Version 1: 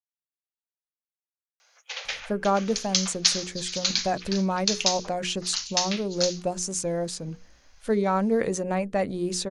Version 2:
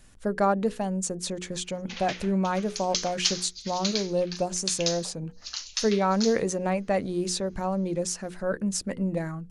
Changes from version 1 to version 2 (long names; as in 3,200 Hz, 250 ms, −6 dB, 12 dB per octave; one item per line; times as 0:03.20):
speech: entry −2.05 s
background −5.0 dB